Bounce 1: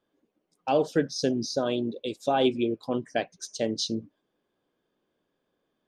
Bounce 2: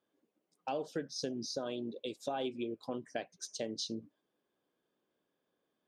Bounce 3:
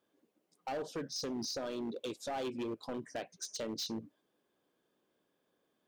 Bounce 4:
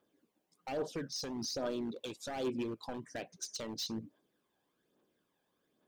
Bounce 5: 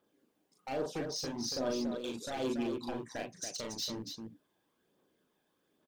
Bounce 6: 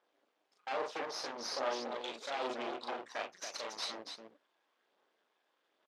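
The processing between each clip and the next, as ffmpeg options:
-af "highpass=f=140:p=1,acompressor=threshold=-31dB:ratio=3,volume=-5dB"
-filter_complex "[0:a]asplit=2[a][b];[b]alimiter=level_in=10dB:limit=-24dB:level=0:latency=1:release=50,volume=-10dB,volume=0dB[c];[a][c]amix=inputs=2:normalize=0,asoftclip=type=hard:threshold=-32dB,volume=-2dB"
-af "aphaser=in_gain=1:out_gain=1:delay=1.3:decay=0.47:speed=1.2:type=triangular,volume=-1dB"
-af "aecho=1:1:37.9|282.8:0.708|0.501"
-af "aeval=exprs='max(val(0),0)':c=same,highpass=580,lowpass=4.3k,volume=7dB"

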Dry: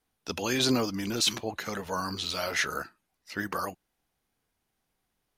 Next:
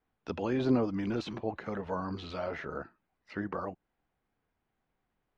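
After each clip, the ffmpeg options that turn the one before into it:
-filter_complex "[0:a]lowpass=2.1k,acrossover=split=890[a][b];[b]acompressor=threshold=-44dB:ratio=6[c];[a][c]amix=inputs=2:normalize=0"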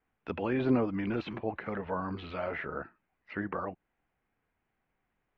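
-af "lowpass=f=2.4k:t=q:w=1.7"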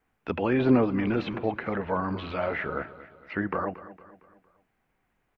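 -af "aecho=1:1:229|458|687|916:0.158|0.0729|0.0335|0.0154,volume=6dB"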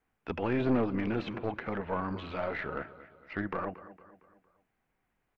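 -af "aeval=exprs='(tanh(7.94*val(0)+0.5)-tanh(0.5))/7.94':c=same,volume=-3dB"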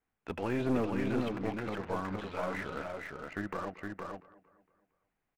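-filter_complex "[0:a]asplit=2[a][b];[b]acrusher=bits=5:mix=0:aa=0.5,volume=-6dB[c];[a][c]amix=inputs=2:normalize=0,aecho=1:1:465:0.631,volume=-6.5dB"

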